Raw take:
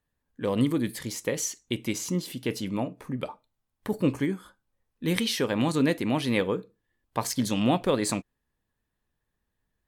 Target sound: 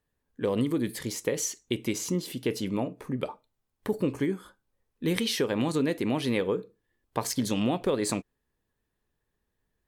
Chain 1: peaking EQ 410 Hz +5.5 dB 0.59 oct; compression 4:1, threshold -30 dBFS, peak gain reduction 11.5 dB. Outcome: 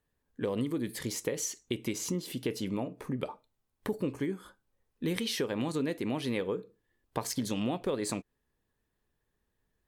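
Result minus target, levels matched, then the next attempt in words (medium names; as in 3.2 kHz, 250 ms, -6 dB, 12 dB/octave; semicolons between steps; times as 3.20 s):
compression: peak gain reduction +5 dB
peaking EQ 410 Hz +5.5 dB 0.59 oct; compression 4:1, threshold -23 dBFS, peak gain reduction 6.5 dB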